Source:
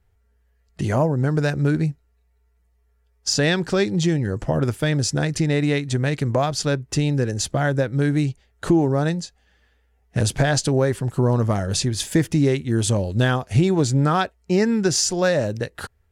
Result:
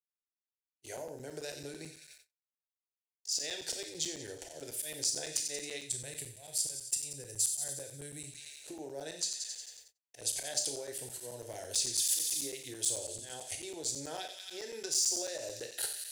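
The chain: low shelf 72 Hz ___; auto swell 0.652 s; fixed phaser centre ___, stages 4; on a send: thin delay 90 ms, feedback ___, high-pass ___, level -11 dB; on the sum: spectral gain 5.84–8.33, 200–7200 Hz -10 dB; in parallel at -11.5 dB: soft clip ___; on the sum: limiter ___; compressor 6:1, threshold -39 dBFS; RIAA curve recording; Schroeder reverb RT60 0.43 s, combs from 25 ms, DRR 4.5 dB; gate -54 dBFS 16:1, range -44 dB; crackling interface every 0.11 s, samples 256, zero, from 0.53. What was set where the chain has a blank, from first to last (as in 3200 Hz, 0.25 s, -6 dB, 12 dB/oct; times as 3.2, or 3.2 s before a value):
-9.5 dB, 490 Hz, 64%, 2300 Hz, -24 dBFS, -15.5 dBFS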